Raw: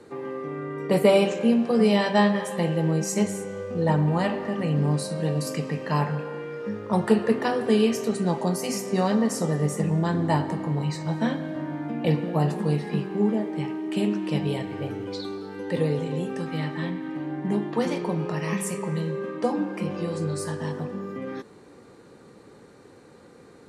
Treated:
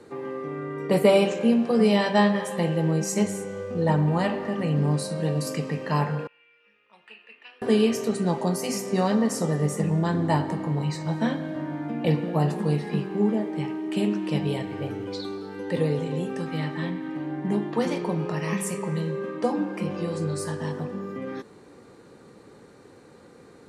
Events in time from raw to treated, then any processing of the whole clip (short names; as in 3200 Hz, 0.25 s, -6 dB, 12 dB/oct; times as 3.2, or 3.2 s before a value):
6.27–7.62 band-pass 2600 Hz, Q 11